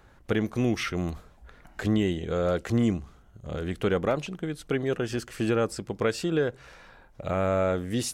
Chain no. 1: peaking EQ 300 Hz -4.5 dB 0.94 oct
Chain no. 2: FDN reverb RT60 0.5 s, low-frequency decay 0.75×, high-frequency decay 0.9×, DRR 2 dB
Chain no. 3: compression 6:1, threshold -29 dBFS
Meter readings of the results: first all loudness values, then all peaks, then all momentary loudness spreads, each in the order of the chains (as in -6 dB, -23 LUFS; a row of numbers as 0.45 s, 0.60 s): -30.0 LUFS, -26.5 LUFS, -34.5 LUFS; -15.0 dBFS, -11.0 dBFS, -19.5 dBFS; 10 LU, 12 LU, 13 LU